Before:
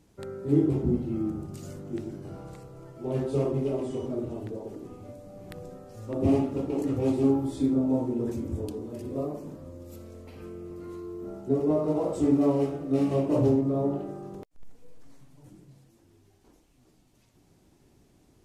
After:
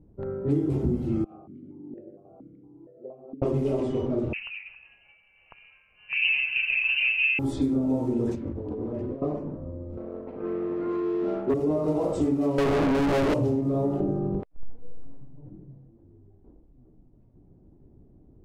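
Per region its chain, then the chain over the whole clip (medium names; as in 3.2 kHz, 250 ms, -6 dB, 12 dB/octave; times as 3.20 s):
1.24–3.42 s: compressor with a negative ratio -33 dBFS + stepped vowel filter 4.3 Hz
4.33–7.39 s: frequency inversion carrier 2.9 kHz + peaking EQ 290 Hz -14 dB 0.95 oct
8.35–9.22 s: bass shelf 270 Hz -4.5 dB + compressor with a negative ratio -39 dBFS + small samples zeroed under -53 dBFS
9.97–11.54 s: high-pass 280 Hz + treble shelf 6.4 kHz -10 dB + waveshaping leveller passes 2
12.58–13.34 s: median filter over 41 samples + hum notches 50/100/150/200/250/300 Hz + overdrive pedal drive 41 dB, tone 3.4 kHz, clips at -14 dBFS
14.00–14.40 s: tilt shelf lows +10 dB, about 880 Hz + band-stop 2 kHz, Q 25
whole clip: level-controlled noise filter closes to 440 Hz, open at -23.5 dBFS; bass shelf 62 Hz +8 dB; compression, threshold -27 dBFS; trim +5.5 dB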